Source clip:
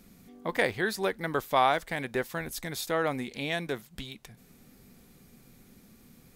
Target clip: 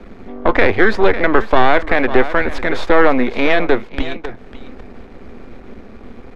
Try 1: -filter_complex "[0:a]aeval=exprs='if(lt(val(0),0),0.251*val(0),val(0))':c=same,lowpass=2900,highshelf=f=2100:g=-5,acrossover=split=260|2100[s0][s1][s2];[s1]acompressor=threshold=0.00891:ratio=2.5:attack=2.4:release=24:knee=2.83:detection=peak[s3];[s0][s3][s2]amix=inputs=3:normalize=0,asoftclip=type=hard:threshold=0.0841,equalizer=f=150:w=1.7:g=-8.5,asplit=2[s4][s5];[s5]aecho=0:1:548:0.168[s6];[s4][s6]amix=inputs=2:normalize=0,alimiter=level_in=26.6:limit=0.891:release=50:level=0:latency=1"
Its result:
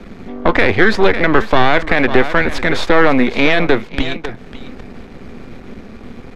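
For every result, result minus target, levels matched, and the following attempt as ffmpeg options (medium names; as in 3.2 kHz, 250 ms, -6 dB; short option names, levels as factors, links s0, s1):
4 kHz band +4.0 dB; 125 Hz band +4.0 dB
-filter_complex "[0:a]aeval=exprs='if(lt(val(0),0),0.251*val(0),val(0))':c=same,lowpass=2900,highshelf=f=2100:g=-14,acrossover=split=260|2100[s0][s1][s2];[s1]acompressor=threshold=0.00891:ratio=2.5:attack=2.4:release=24:knee=2.83:detection=peak[s3];[s0][s3][s2]amix=inputs=3:normalize=0,asoftclip=type=hard:threshold=0.0841,equalizer=f=150:w=1.7:g=-8.5,asplit=2[s4][s5];[s5]aecho=0:1:548:0.168[s6];[s4][s6]amix=inputs=2:normalize=0,alimiter=level_in=26.6:limit=0.891:release=50:level=0:latency=1"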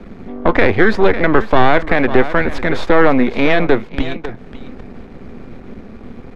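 125 Hz band +5.0 dB
-filter_complex "[0:a]aeval=exprs='if(lt(val(0),0),0.251*val(0),val(0))':c=same,lowpass=2900,highshelf=f=2100:g=-14,acrossover=split=260|2100[s0][s1][s2];[s1]acompressor=threshold=0.00891:ratio=2.5:attack=2.4:release=24:knee=2.83:detection=peak[s3];[s0][s3][s2]amix=inputs=3:normalize=0,asoftclip=type=hard:threshold=0.0841,equalizer=f=150:w=1.7:g=-19.5,asplit=2[s4][s5];[s5]aecho=0:1:548:0.168[s6];[s4][s6]amix=inputs=2:normalize=0,alimiter=level_in=26.6:limit=0.891:release=50:level=0:latency=1"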